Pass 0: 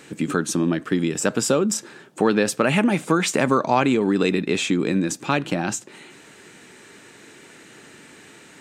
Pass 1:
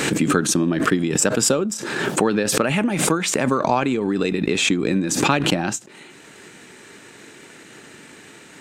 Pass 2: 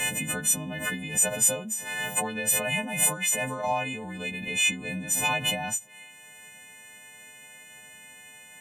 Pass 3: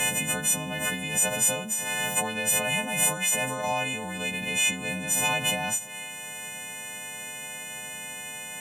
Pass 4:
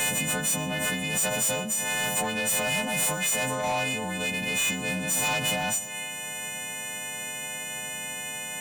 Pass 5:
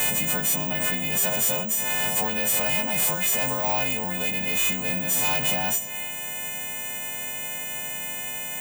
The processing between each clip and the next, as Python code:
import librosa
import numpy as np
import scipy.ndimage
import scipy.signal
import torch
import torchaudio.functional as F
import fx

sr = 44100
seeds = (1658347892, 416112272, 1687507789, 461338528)

y1 = fx.rider(x, sr, range_db=10, speed_s=2.0)
y1 = fx.transient(y1, sr, attack_db=3, sustain_db=-6)
y1 = fx.pre_swell(y1, sr, db_per_s=33.0)
y1 = y1 * librosa.db_to_amplitude(-1.5)
y2 = fx.freq_snap(y1, sr, grid_st=3)
y2 = fx.fixed_phaser(y2, sr, hz=1300.0, stages=6)
y2 = y2 * librosa.db_to_amplitude(-7.5)
y3 = fx.bin_compress(y2, sr, power=0.6)
y3 = y3 * librosa.db_to_amplitude(-2.5)
y4 = fx.leveller(y3, sr, passes=1)
y4 = 10.0 ** (-22.0 / 20.0) * np.tanh(y4 / 10.0 ** (-22.0 / 20.0))
y4 = y4 + 10.0 ** (-18.0 / 20.0) * np.pad(y4, (int(122 * sr / 1000.0), 0))[:len(y4)]
y5 = (np.kron(y4[::2], np.eye(2)[0]) * 2)[:len(y4)]